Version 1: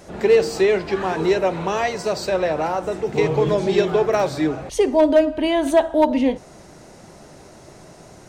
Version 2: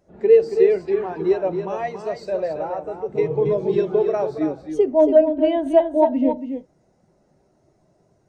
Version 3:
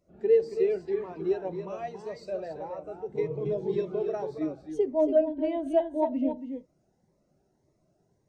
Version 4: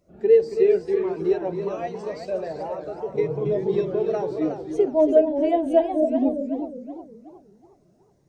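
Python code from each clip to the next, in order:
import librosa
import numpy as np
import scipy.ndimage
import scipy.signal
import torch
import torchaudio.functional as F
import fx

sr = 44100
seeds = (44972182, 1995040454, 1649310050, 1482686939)

y1 = x + 10.0 ** (-5.5 / 20.0) * np.pad(x, (int(277 * sr / 1000.0), 0))[:len(x)]
y1 = fx.spectral_expand(y1, sr, expansion=1.5)
y2 = fx.notch_cascade(y1, sr, direction='rising', hz=1.8)
y2 = F.gain(torch.from_numpy(y2), -8.0).numpy()
y3 = fx.spec_repair(y2, sr, seeds[0], start_s=5.99, length_s=0.71, low_hz=790.0, high_hz=4400.0, source='both')
y3 = fx.echo_warbled(y3, sr, ms=368, feedback_pct=36, rate_hz=2.8, cents=184, wet_db=-9.0)
y3 = F.gain(torch.from_numpy(y3), 6.0).numpy()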